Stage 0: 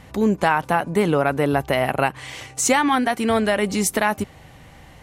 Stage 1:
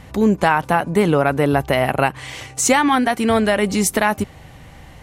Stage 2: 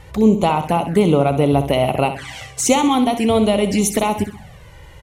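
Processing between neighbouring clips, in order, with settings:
low-shelf EQ 130 Hz +4 dB; level +2.5 dB
repeating echo 64 ms, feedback 47%, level −10.5 dB; flanger swept by the level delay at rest 2.4 ms, full sweep at −14 dBFS; level +2 dB

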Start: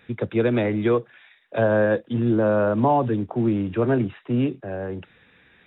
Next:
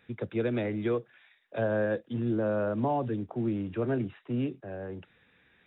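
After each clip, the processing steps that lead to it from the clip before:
dynamic equaliser 1,000 Hz, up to −4 dB, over −39 dBFS, Q 2.4
level −8.5 dB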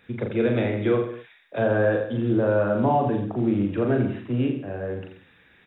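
reverse bouncing-ball delay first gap 40 ms, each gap 1.1×, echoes 5
level +5.5 dB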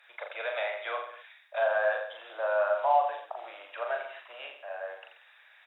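Chebyshev high-pass filter 610 Hz, order 5
harmonic generator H 5 −39 dB, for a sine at −13.5 dBFS

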